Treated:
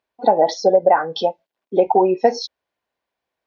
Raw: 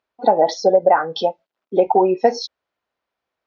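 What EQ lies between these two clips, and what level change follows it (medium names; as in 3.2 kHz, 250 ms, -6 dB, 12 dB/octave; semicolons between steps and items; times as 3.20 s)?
band-stop 1.3 kHz, Q 7; 0.0 dB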